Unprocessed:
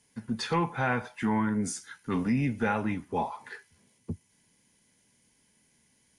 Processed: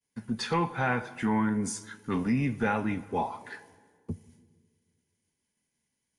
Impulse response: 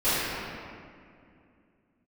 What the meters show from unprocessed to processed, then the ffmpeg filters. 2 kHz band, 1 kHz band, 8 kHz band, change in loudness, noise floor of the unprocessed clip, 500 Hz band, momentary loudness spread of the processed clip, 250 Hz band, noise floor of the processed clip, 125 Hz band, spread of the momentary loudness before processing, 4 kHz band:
+0.5 dB, +0.5 dB, 0.0 dB, +0.5 dB, -69 dBFS, +0.5 dB, 15 LU, 0.0 dB, -83 dBFS, 0.0 dB, 15 LU, 0.0 dB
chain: -filter_complex "[0:a]agate=range=-33dB:threshold=-57dB:ratio=3:detection=peak,asplit=2[a][b];[1:a]atrim=start_sample=2205,asetrate=66150,aresample=44100[c];[b][c]afir=irnorm=-1:irlink=0,volume=-30dB[d];[a][d]amix=inputs=2:normalize=0"

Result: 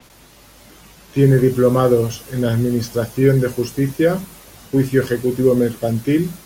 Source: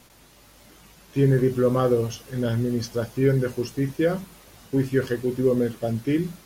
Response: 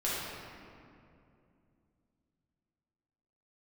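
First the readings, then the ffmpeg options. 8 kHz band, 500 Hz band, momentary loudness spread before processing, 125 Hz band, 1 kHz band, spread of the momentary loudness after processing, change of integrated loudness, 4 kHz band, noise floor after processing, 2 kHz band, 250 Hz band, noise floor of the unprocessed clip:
+8.0 dB, +6.5 dB, 8 LU, +6.5 dB, +6.5 dB, 8 LU, +6.5 dB, +6.0 dB, -46 dBFS, +6.5 dB, +6.5 dB, -53 dBFS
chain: -filter_complex "[0:a]acrossover=split=250|570|2500[a][b][c][d];[d]asoftclip=type=tanh:threshold=-34.5dB[e];[a][b][c][e]amix=inputs=4:normalize=0,adynamicequalizer=threshold=0.00316:dfrequency=6300:dqfactor=0.7:tfrequency=6300:tqfactor=0.7:attack=5:release=100:ratio=0.375:range=2.5:mode=boostabove:tftype=highshelf,volume=6.5dB"

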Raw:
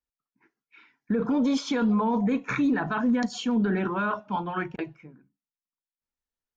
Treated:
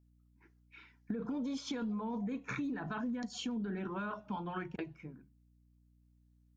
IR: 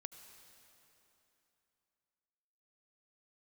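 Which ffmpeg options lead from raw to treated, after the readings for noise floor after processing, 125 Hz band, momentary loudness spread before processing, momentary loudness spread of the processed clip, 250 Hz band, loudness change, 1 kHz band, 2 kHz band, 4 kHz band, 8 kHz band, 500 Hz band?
-68 dBFS, -10.5 dB, 8 LU, 14 LU, -13.0 dB, -13.0 dB, -13.5 dB, -12.5 dB, -9.0 dB, n/a, -13.5 dB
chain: -af "equalizer=f=1.1k:w=0.38:g=-4.5,acompressor=threshold=-38dB:ratio=5,aeval=exprs='val(0)+0.000447*(sin(2*PI*60*n/s)+sin(2*PI*2*60*n/s)/2+sin(2*PI*3*60*n/s)/3+sin(2*PI*4*60*n/s)/4+sin(2*PI*5*60*n/s)/5)':c=same,volume=1dB"

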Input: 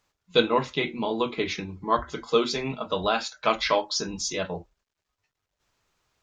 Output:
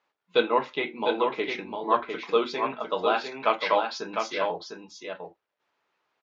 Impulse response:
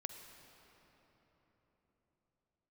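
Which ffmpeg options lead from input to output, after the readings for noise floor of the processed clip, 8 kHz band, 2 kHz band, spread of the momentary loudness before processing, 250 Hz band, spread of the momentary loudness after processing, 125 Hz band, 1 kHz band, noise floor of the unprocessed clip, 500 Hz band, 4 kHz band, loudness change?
-84 dBFS, -13.0 dB, 0.0 dB, 7 LU, -4.0 dB, 15 LU, -12.5 dB, +1.5 dB, -84 dBFS, 0.0 dB, -5.0 dB, -0.5 dB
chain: -filter_complex "[0:a]highpass=330,lowpass=2.9k,equalizer=f=870:t=o:w=0.21:g=3,asplit=2[a][b];[b]aecho=0:1:703:0.531[c];[a][c]amix=inputs=2:normalize=0"

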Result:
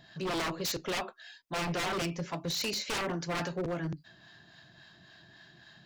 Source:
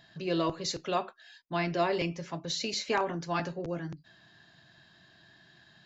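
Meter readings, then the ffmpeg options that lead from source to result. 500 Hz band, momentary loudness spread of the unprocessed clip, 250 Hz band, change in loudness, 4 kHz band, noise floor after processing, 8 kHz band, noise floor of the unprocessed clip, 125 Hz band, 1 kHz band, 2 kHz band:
-3.5 dB, 9 LU, -2.0 dB, -1.5 dB, +1.0 dB, -59 dBFS, n/a, -61 dBFS, 0.0 dB, -3.5 dB, +1.0 dB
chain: -filter_complex "[0:a]acrossover=split=650[a][b];[a]aeval=exprs='val(0)*(1-0.5/2+0.5/2*cos(2*PI*3.6*n/s))':c=same[c];[b]aeval=exprs='val(0)*(1-0.5/2-0.5/2*cos(2*PI*3.6*n/s))':c=same[d];[c][d]amix=inputs=2:normalize=0,aeval=exprs='0.0237*(abs(mod(val(0)/0.0237+3,4)-2)-1)':c=same,volume=5dB"

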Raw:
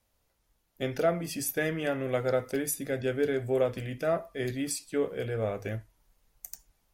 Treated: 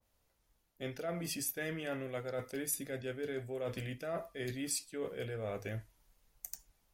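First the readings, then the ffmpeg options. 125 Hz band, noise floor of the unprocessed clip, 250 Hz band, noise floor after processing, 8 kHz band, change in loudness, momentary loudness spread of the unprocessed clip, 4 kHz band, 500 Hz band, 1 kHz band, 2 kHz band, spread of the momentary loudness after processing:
-7.5 dB, -75 dBFS, -9.0 dB, -77 dBFS, -3.0 dB, -9.0 dB, 11 LU, -3.5 dB, -11.0 dB, -10.5 dB, -7.5 dB, 9 LU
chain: -af "areverse,acompressor=threshold=-34dB:ratio=6,areverse,adynamicequalizer=threshold=0.00224:dfrequency=1700:dqfactor=0.7:tfrequency=1700:tqfactor=0.7:attack=5:release=100:ratio=0.375:range=2:mode=boostabove:tftype=highshelf,volume=-2.5dB"

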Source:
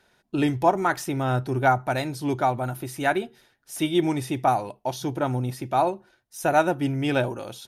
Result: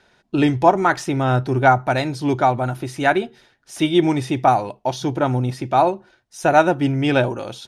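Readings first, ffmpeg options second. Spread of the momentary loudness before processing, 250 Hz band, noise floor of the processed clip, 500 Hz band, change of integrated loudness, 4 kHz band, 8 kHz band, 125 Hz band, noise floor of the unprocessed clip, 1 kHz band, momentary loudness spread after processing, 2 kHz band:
8 LU, +6.0 dB, -62 dBFS, +6.0 dB, +6.0 dB, +5.5 dB, +1.5 dB, +6.0 dB, -68 dBFS, +6.0 dB, 8 LU, +6.0 dB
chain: -af "lowpass=6.8k,volume=6dB"

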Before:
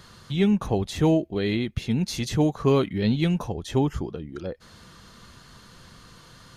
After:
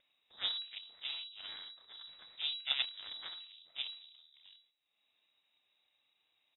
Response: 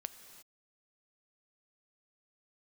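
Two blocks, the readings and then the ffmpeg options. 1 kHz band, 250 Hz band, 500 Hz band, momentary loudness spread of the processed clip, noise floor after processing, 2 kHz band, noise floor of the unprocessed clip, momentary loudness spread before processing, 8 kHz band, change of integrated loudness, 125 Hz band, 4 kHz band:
-23.5 dB, under -40 dB, -40.0 dB, 17 LU, -81 dBFS, -10.0 dB, -51 dBFS, 13 LU, under -40 dB, -14.5 dB, under -40 dB, -0.5 dB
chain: -filter_complex "[0:a]aecho=1:1:30|63|99.3|139.2|183.2:0.631|0.398|0.251|0.158|0.1,agate=range=-10dB:threshold=-43dB:ratio=16:detection=peak[a];[1:a]atrim=start_sample=2205,atrim=end_sample=3969[b];[a][b]afir=irnorm=-1:irlink=0,acrossover=split=200|1200|2900[c][d][e][f];[c]asoftclip=type=hard:threshold=-33.5dB[g];[g][d][e][f]amix=inputs=4:normalize=0,aeval=exprs='0.282*(cos(1*acos(clip(val(0)/0.282,-1,1)))-cos(1*PI/2))+0.0398*(cos(2*acos(clip(val(0)/0.282,-1,1)))-cos(2*PI/2))+0.1*(cos(3*acos(clip(val(0)/0.282,-1,1)))-cos(3*PI/2))+0.0447*(cos(4*acos(clip(val(0)/0.282,-1,1)))-cos(4*PI/2))+0.00178*(cos(6*acos(clip(val(0)/0.282,-1,1)))-cos(6*PI/2))':c=same,lowpass=f=3.3k:t=q:w=0.5098,lowpass=f=3.3k:t=q:w=0.6013,lowpass=f=3.3k:t=q:w=0.9,lowpass=f=3.3k:t=q:w=2.563,afreqshift=-3900,acompressor=mode=upward:threshold=-56dB:ratio=2.5,volume=-7.5dB" -ar 32000 -c:a libvorbis -b:a 96k

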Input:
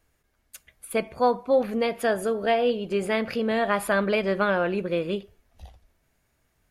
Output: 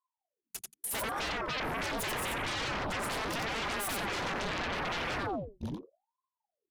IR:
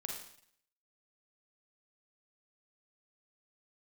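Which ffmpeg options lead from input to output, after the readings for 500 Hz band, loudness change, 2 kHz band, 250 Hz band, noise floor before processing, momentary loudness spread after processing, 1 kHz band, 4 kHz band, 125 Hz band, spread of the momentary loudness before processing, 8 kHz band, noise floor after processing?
-15.5 dB, -9.0 dB, -4.5 dB, -11.5 dB, -71 dBFS, 8 LU, -6.5 dB, +0.5 dB, -4.5 dB, 7 LU, +3.0 dB, under -85 dBFS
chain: -filter_complex "[0:a]equalizer=f=210:t=o:w=1.3:g=6.5,bandreject=f=50:t=h:w=6,bandreject=f=100:t=h:w=6,bandreject=f=150:t=h:w=6,bandreject=f=200:t=h:w=6,bandreject=f=250:t=h:w=6,agate=range=-27dB:threshold=-46dB:ratio=16:detection=peak,asplit=2[a][b];[1:a]atrim=start_sample=2205,asetrate=52920,aresample=44100[c];[b][c]afir=irnorm=-1:irlink=0,volume=-20dB[d];[a][d]amix=inputs=2:normalize=0,acompressor=threshold=-28dB:ratio=5,equalizer=f=1.6k:t=o:w=1.9:g=-9,aecho=1:1:90|180|270:0.562|0.0844|0.0127,aeval=exprs='0.1*sin(PI/2*7.94*val(0)/0.1)':c=same,anlmdn=0.631,aeval=exprs='val(0)*sin(2*PI*600*n/s+600*0.75/0.8*sin(2*PI*0.8*n/s))':c=same,volume=-8.5dB"

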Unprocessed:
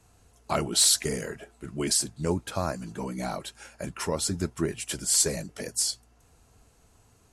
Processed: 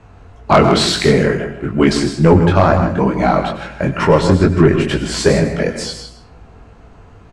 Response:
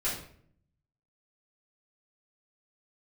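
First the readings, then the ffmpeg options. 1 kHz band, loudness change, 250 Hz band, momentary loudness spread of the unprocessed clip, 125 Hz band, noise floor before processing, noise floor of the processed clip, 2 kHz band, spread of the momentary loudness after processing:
+19.0 dB, +13.0 dB, +19.0 dB, 18 LU, +20.0 dB, -62 dBFS, -43 dBFS, +18.0 dB, 10 LU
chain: -filter_complex "[0:a]lowpass=2.2k,flanger=delay=18:depth=4.7:speed=2.2,aeval=exprs='0.168*(cos(1*acos(clip(val(0)/0.168,-1,1)))-cos(1*PI/2))+0.00944*(cos(5*acos(clip(val(0)/0.168,-1,1)))-cos(5*PI/2))+0.0106*(cos(7*acos(clip(val(0)/0.168,-1,1)))-cos(7*PI/2))':c=same,aecho=1:1:159:0.282,asplit=2[a][b];[1:a]atrim=start_sample=2205,highshelf=f=8.2k:g=12,adelay=91[c];[b][c]afir=irnorm=-1:irlink=0,volume=-18.5dB[d];[a][d]amix=inputs=2:normalize=0,apsyclip=24.5dB,volume=-1.5dB"

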